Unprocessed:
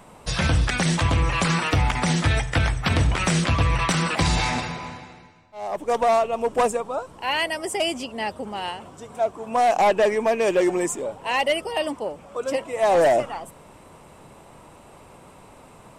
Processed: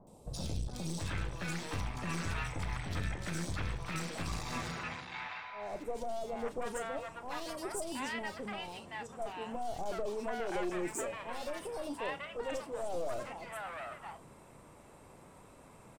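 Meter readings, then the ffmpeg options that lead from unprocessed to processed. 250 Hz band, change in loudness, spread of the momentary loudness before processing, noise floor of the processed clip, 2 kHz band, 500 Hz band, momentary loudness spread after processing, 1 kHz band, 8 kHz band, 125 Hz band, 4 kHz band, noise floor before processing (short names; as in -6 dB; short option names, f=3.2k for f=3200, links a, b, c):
-14.5 dB, -16.5 dB, 12 LU, -57 dBFS, -15.0 dB, -16.5 dB, 11 LU, -17.0 dB, -13.5 dB, -16.5 dB, -17.0 dB, -48 dBFS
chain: -filter_complex "[0:a]bandreject=f=2.9k:w=17,aeval=exprs='clip(val(0),-1,0.0376)':c=same,asplit=2[a][b];[b]adelay=34,volume=-13dB[c];[a][c]amix=inputs=2:normalize=0,alimiter=limit=-18dB:level=0:latency=1:release=126,acrossover=split=810|3500[d][e][f];[f]adelay=70[g];[e]adelay=730[h];[d][h][g]amix=inputs=3:normalize=0,volume=-8dB"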